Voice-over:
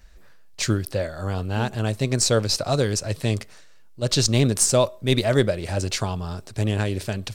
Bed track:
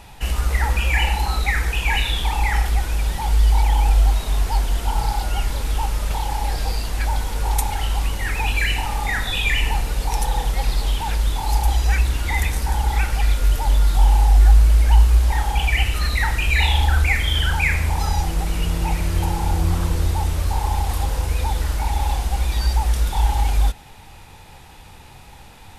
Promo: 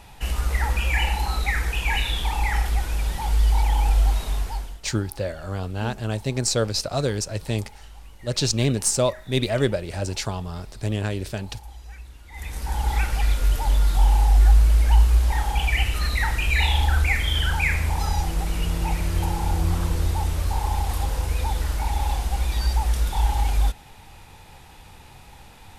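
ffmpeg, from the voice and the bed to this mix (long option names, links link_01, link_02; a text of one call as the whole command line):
ffmpeg -i stem1.wav -i stem2.wav -filter_complex "[0:a]adelay=4250,volume=-2.5dB[link_01];[1:a]volume=16.5dB,afade=type=out:start_time=4.23:duration=0.57:silence=0.105925,afade=type=in:start_time=12.31:duration=0.58:silence=0.1[link_02];[link_01][link_02]amix=inputs=2:normalize=0" out.wav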